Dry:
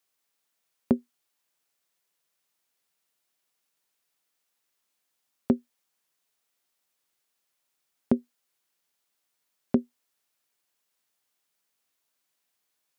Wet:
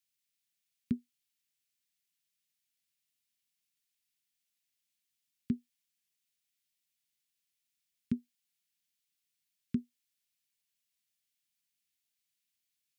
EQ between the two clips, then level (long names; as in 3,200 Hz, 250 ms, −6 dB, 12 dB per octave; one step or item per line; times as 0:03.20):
Chebyshev band-stop filter 190–2,400 Hz, order 2
−5.0 dB